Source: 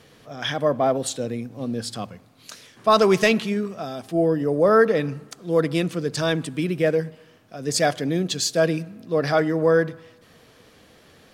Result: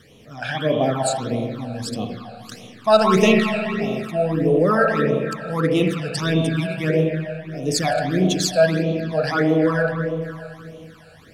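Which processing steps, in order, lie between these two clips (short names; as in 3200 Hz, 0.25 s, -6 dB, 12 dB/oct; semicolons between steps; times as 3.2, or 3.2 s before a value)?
spring tank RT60 2.6 s, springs 32/37/60 ms, chirp 60 ms, DRR 0.5 dB; phaser stages 12, 1.6 Hz, lowest notch 330–1600 Hz; gain +3 dB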